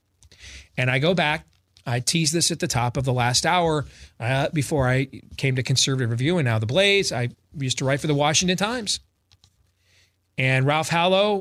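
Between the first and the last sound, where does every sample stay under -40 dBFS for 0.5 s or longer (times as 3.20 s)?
9.44–10.38 s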